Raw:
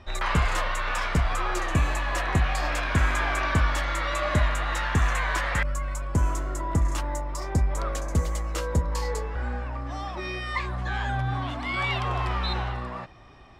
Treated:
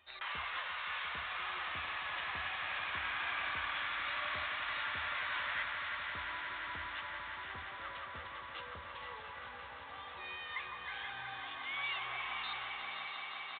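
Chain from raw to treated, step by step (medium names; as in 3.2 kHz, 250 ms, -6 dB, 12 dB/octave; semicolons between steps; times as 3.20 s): differentiator; repeats whose band climbs or falls 158 ms, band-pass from 1 kHz, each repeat 0.7 oct, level -1.5 dB; resampled via 8 kHz; peaking EQ 81 Hz +14.5 dB 0.27 oct; echo with a slow build-up 174 ms, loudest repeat 5, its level -11 dB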